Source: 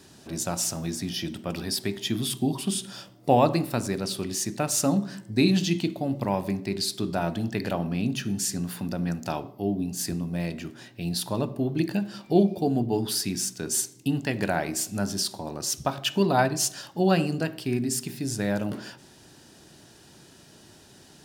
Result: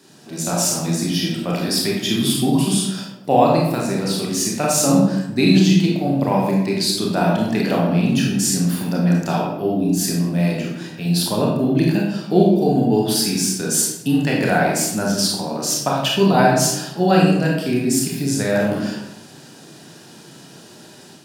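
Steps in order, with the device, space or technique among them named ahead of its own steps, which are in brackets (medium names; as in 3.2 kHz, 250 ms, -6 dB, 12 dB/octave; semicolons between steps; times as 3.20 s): far laptop microphone (reverberation RT60 0.90 s, pre-delay 26 ms, DRR -3 dB; high-pass 130 Hz 24 dB/octave; level rider gain up to 5.5 dB)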